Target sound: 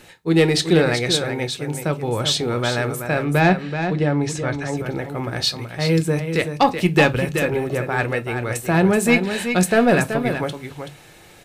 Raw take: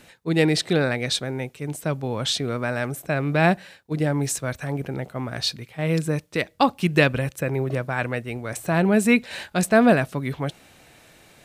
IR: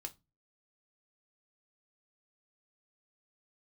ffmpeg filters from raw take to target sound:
-filter_complex "[0:a]asettb=1/sr,asplit=3[a][b][c];[a]atrim=end=3.244[d];[b]atrim=start=3.24:end=4.74,asetpts=PTS-STARTPTS,afade=t=in:d=0.004:c=qsin,afade=t=out:st=1.496:d=0.004:c=qsin,lowpass=4.9k[e];[c]atrim=start=4.736[f];[d][e]acrossfade=d=0.004:c1=hsin:c2=qsin[g];[g][f]acrossfade=d=0.004:c1=qsin:c2=hsin,asoftclip=type=tanh:threshold=-10.5dB,aecho=1:1:379:0.398,asplit=2[h][i];[1:a]atrim=start_sample=2205[j];[i][j]afir=irnorm=-1:irlink=0,volume=9.5dB[k];[h][k]amix=inputs=2:normalize=0,volume=-4.5dB"

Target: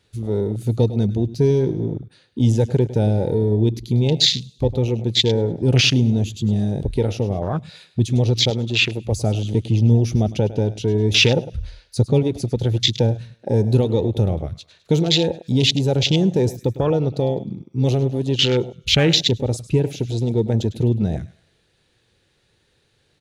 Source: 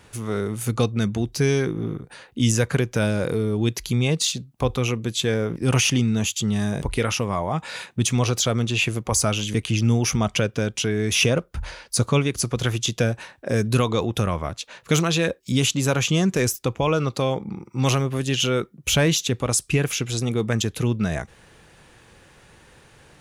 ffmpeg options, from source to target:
-filter_complex "[0:a]equalizer=f=100:t=o:w=0.67:g=5,equalizer=f=400:t=o:w=0.67:g=4,equalizer=f=1k:t=o:w=0.67:g=-6,equalizer=f=4k:t=o:w=0.67:g=11,asplit=2[a][b];[b]aecho=0:1:103|206|309|412:0.188|0.081|0.0348|0.015[c];[a][c]amix=inputs=2:normalize=0,afwtdn=0.0794,asettb=1/sr,asplit=3[d][e][f];[d]atrim=end=8.504[g];[e]atrim=start=8.5:end=9.05,asetpts=PTS-STARTPTS,afade=t=in:d=0.004:c=qsin,afade=t=out:st=0.546:d=0.004:c=qsin,lowshelf=f=170:g=-10[h];[f]atrim=start=9.046[i];[g][h]acrossfade=d=0.004:c1=hsin:c2=qsin[j];[j][i]acrossfade=d=0.004:c1=qsin:c2=hsin,volume=1.5dB"

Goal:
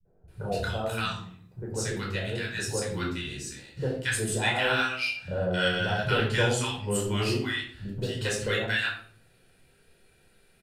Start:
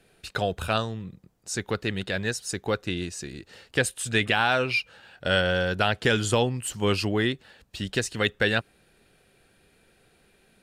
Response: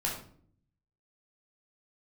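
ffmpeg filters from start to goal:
-filter_complex "[0:a]highshelf=f=5.6k:g=4.5,acrossover=split=190|940[a][b][c];[b]adelay=50[d];[c]adelay=280[e];[a][d][e]amix=inputs=3:normalize=0[f];[1:a]atrim=start_sample=2205[g];[f][g]afir=irnorm=-1:irlink=0,volume=-7dB"

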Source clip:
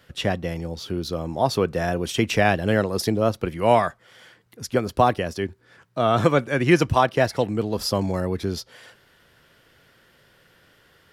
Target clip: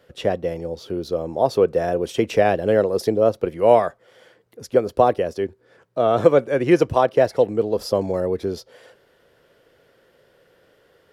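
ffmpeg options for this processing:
-af "equalizer=f=490:w=1.1:g=13.5,volume=-6dB"

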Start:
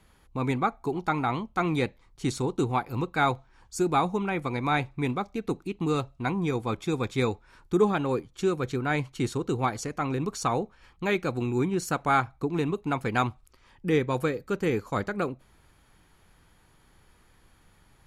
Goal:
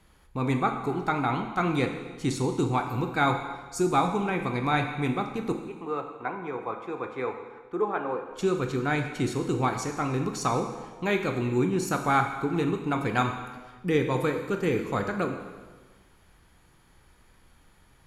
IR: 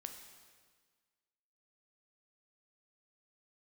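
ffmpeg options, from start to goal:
-filter_complex "[0:a]asettb=1/sr,asplit=3[a][b][c];[a]atrim=end=5.524[d];[b]atrim=start=5.52:end=8.31,asetpts=PTS-STARTPTS,afade=t=in:d=0.004:c=qsin,afade=t=out:st=2.786:d=0.004:c=qsin,acrossover=split=400 2100:gain=0.126 1 0.0708[e][f][g];[e][f][g]amix=inputs=3:normalize=0[h];[c]atrim=start=8.306[i];[d][h]acrossfade=d=0.004:c1=hsin:c2=qsin[j];[j][i]acrossfade=d=0.004:c1=qsin:c2=hsin[k];[1:a]atrim=start_sample=2205,asetrate=52920,aresample=44100[l];[k][l]afir=irnorm=-1:irlink=0,volume=6.5dB"

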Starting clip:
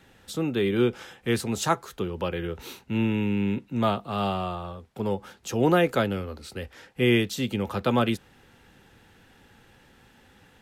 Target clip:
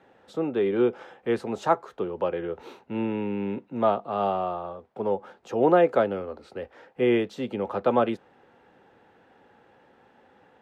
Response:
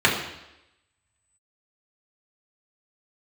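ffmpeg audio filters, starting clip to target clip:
-af "bandpass=f=630:t=q:w=1.1:csg=0,volume=5dB"

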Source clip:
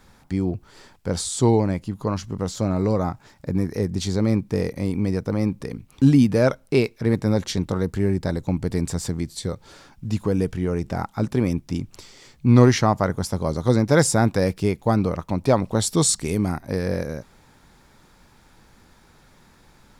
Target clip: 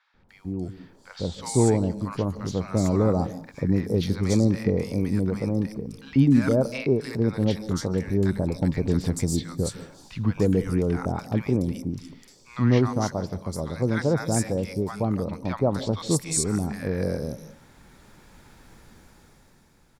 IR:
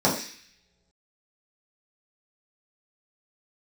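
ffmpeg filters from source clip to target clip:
-filter_complex "[0:a]dynaudnorm=f=170:g=13:m=11.5dB,acrossover=split=990|4300[a][b][c];[a]adelay=140[d];[c]adelay=290[e];[d][b][e]amix=inputs=3:normalize=0,asplit=2[f][g];[1:a]atrim=start_sample=2205,adelay=143[h];[g][h]afir=irnorm=-1:irlink=0,volume=-35.5dB[i];[f][i]amix=inputs=2:normalize=0,volume=-7.5dB"

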